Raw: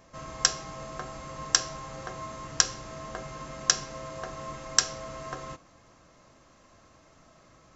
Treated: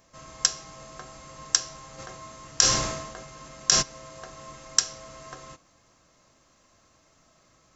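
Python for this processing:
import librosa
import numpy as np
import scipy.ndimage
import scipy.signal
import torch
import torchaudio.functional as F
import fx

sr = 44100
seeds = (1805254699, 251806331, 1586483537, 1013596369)

y = fx.high_shelf(x, sr, hz=3400.0, db=9.5)
y = fx.sustainer(y, sr, db_per_s=49.0, at=(1.98, 3.81), fade=0.02)
y = y * librosa.db_to_amplitude(-6.0)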